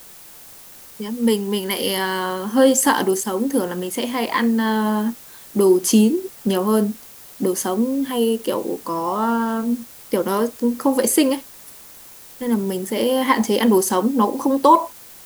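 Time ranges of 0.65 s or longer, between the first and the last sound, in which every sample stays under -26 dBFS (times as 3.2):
11.39–12.41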